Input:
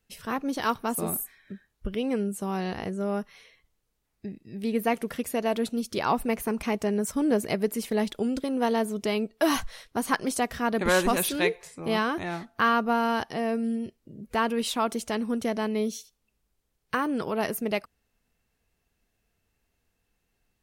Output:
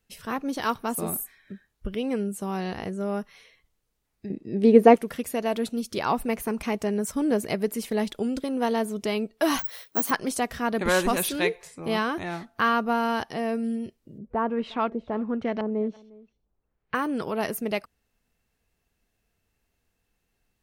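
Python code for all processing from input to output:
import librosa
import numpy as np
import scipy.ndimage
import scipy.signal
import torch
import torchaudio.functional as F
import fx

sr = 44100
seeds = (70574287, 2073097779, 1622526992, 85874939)

y = fx.chain(x, sr, fx.lowpass(hz=8500.0, slope=12),
    fx.peak_eq(hz=410.0, db=14.5, octaves=2.6), at=(4.3, 4.96))
y = fx.chain(y, sr, fx.high_shelf(hz=8800.0, db=4.0),
    fx.resample_bad(factor=2, down='none', up='zero_stuff'),
    fx.highpass(hz=190.0, slope=12), at=(9.59, 10.11))
y = fx.chain(y, sr, fx.high_shelf(hz=8900.0, db=-10.5),
    fx.filter_lfo_lowpass(shape='saw_up', hz=1.4, low_hz=560.0, high_hz=3400.0, q=0.96),
    fx.echo_single(ms=355, db=-23.0), at=(14.18, 16.95))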